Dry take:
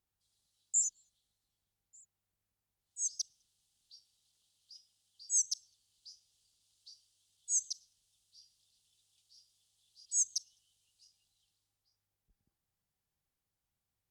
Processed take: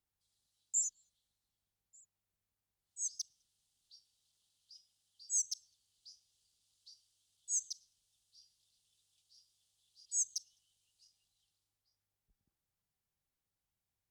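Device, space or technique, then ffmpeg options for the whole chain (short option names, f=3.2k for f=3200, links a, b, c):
one-band saturation: -filter_complex "[0:a]acrossover=split=360|4900[a][b][c];[b]asoftclip=type=tanh:threshold=-40dB[d];[a][d][c]amix=inputs=3:normalize=0,volume=-3dB"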